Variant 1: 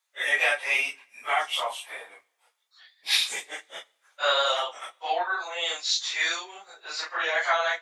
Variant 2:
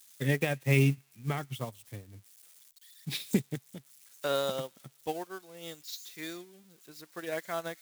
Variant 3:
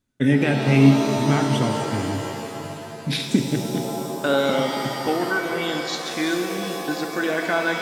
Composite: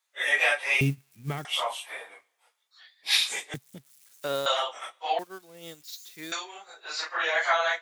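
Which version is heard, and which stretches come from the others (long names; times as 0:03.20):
1
0:00.81–0:01.45: punch in from 2
0:03.54–0:04.46: punch in from 2
0:05.19–0:06.32: punch in from 2
not used: 3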